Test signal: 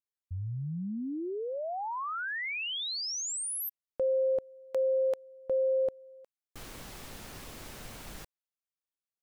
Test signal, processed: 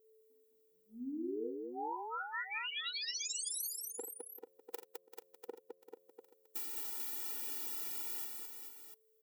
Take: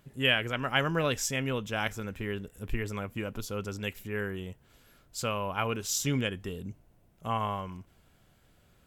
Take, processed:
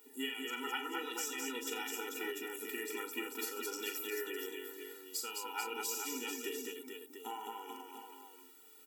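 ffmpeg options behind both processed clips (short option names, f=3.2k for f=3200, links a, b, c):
-filter_complex "[0:a]aemphasis=mode=production:type=bsi,acompressor=threshold=-42dB:ratio=10:attack=73:release=192:knee=1:detection=peak,aeval=exprs='val(0)+0.000355*sin(2*PI*440*n/s)':c=same,asplit=2[a][b];[b]aecho=0:1:41|50|86|210|440|694:0.398|0.158|0.211|0.631|0.473|0.335[c];[a][c]amix=inputs=2:normalize=0,afftfilt=real='re*eq(mod(floor(b*sr/1024/250),2),1)':imag='im*eq(mod(floor(b*sr/1024/250),2),1)':win_size=1024:overlap=0.75,volume=1dB"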